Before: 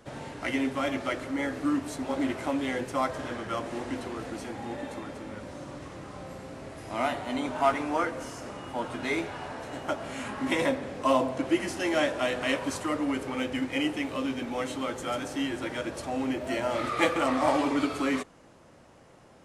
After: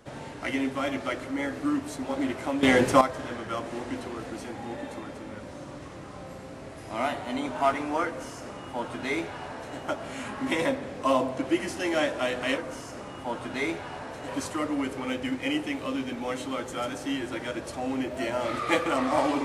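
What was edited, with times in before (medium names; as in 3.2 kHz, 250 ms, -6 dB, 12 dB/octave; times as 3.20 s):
2.63–3.01 s: gain +11 dB
8.07–9.77 s: copy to 12.58 s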